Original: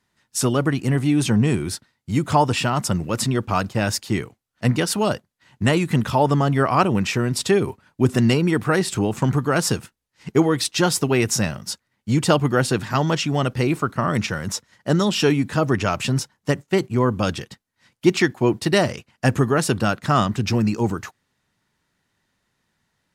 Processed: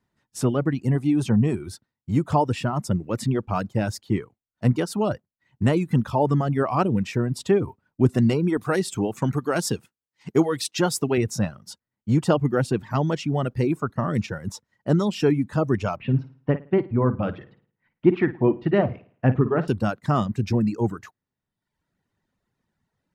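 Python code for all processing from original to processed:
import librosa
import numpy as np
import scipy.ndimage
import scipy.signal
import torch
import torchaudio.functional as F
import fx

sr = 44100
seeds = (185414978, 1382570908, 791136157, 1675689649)

y = fx.chain(x, sr, fx.highpass(hz=160.0, slope=6),
    fx.high_shelf(hz=2500.0, db=7.5), at=(8.57, 11.18))
y = fx.chain(y, sr, fx.lowpass(hz=2700.0, slope=24),
    fx.room_flutter(wall_m=9.4, rt60_s=0.48), at=(15.96, 19.68))
y = fx.dereverb_blind(y, sr, rt60_s=0.89)
y = fx.tilt_shelf(y, sr, db=6.0, hz=1200.0)
y = y * librosa.db_to_amplitude(-6.0)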